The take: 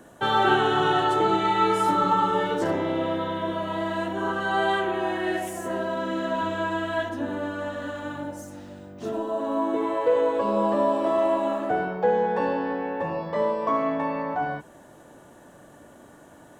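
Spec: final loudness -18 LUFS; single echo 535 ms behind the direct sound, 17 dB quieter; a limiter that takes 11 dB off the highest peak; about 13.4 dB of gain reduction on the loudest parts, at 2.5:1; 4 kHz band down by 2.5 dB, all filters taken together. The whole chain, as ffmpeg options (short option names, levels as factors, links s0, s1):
-af "equalizer=f=4000:t=o:g=-3.5,acompressor=threshold=0.0126:ratio=2.5,alimiter=level_in=2.99:limit=0.0631:level=0:latency=1,volume=0.335,aecho=1:1:535:0.141,volume=15.8"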